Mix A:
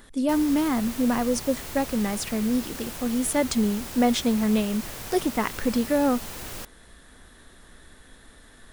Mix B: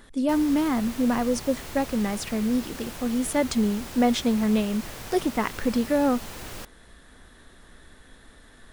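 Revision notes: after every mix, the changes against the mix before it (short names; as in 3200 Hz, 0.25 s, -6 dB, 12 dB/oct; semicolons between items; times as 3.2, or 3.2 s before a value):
master: add high shelf 7000 Hz -6 dB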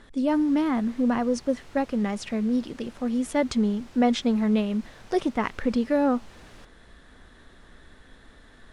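background -10.5 dB; master: add air absorption 64 m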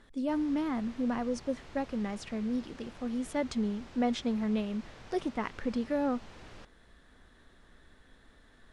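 speech -8.0 dB; background: add air absorption 61 m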